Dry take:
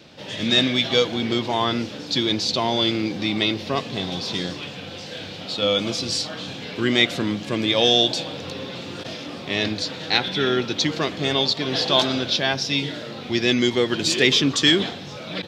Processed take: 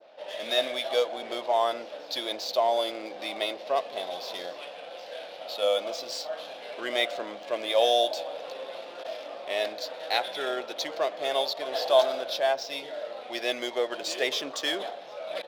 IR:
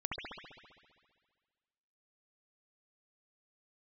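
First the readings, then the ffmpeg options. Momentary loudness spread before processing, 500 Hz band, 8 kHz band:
16 LU, -2.0 dB, -10.5 dB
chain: -af "adynamicequalizer=threshold=0.0251:dfrequency=2900:dqfactor=0.77:tfrequency=2900:tqfactor=0.77:attack=5:release=100:ratio=0.375:range=2.5:mode=cutabove:tftype=bell,adynamicsmooth=sensitivity=6.5:basefreq=3200,highpass=f=620:t=q:w=4.9,volume=0.376"

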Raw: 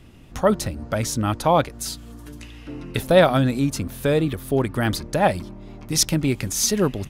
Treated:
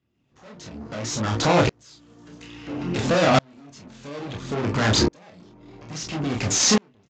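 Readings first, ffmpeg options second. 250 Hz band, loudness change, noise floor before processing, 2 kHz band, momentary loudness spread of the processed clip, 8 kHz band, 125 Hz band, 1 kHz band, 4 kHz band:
-2.5 dB, -0.5 dB, -42 dBFS, +0.5 dB, 18 LU, 0.0 dB, -2.5 dB, -2.5 dB, +2.0 dB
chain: -af "acompressor=threshold=0.112:ratio=6,aeval=exprs='(tanh(56.2*val(0)+0.4)-tanh(0.4))/56.2':c=same,flanger=delay=0.6:depth=7.4:regen=-69:speed=1.6:shape=sinusoidal,aecho=1:1:28|45:0.631|0.299,aresample=16000,aresample=44100,aphaser=in_gain=1:out_gain=1:delay=4.7:decay=0.23:speed=0.65:type=sinusoidal,dynaudnorm=f=130:g=7:m=3.98,highpass=110,alimiter=level_in=8.41:limit=0.891:release=50:level=0:latency=1,aeval=exprs='val(0)*pow(10,-37*if(lt(mod(-0.59*n/s,1),2*abs(-0.59)/1000),1-mod(-0.59*n/s,1)/(2*abs(-0.59)/1000),(mod(-0.59*n/s,1)-2*abs(-0.59)/1000)/(1-2*abs(-0.59)/1000))/20)':c=same,volume=0.562"

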